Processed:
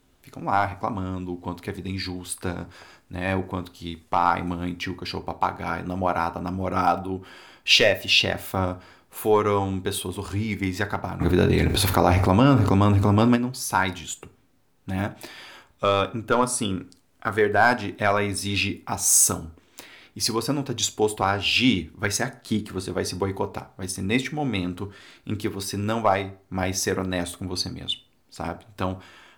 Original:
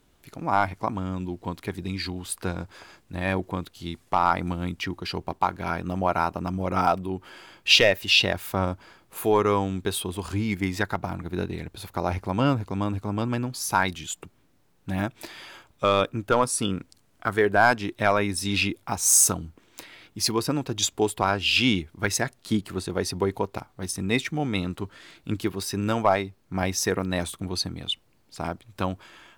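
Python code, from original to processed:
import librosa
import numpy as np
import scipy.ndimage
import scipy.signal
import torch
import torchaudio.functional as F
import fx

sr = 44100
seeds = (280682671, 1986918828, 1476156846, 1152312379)

y = fx.rev_fdn(x, sr, rt60_s=0.42, lf_ratio=0.9, hf_ratio=0.65, size_ms=23.0, drr_db=9.0)
y = fx.env_flatten(y, sr, amount_pct=70, at=(11.2, 13.35), fade=0.02)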